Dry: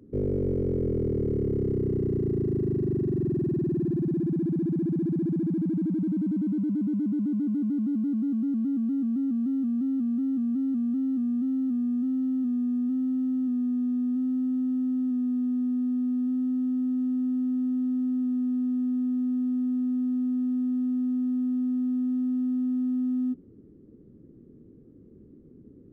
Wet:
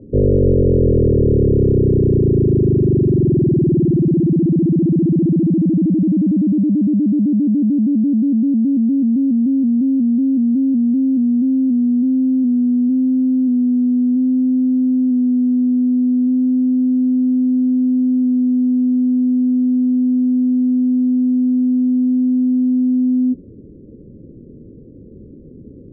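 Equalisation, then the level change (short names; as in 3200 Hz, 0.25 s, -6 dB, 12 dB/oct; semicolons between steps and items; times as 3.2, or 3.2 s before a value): synth low-pass 560 Hz, resonance Q 4.9; low shelf 180 Hz +6.5 dB; low shelf 410 Hz +10.5 dB; 0.0 dB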